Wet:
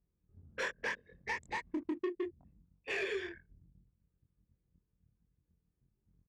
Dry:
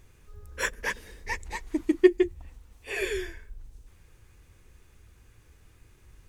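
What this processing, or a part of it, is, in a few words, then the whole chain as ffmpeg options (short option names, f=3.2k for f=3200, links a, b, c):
AM radio: -filter_complex "[0:a]anlmdn=0.251,highpass=160,lowpass=4.1k,asplit=2[a][b];[b]adelay=23,volume=-2dB[c];[a][c]amix=inputs=2:normalize=0,acompressor=threshold=-33dB:ratio=5,asoftclip=type=tanh:threshold=-30dB,volume=1dB"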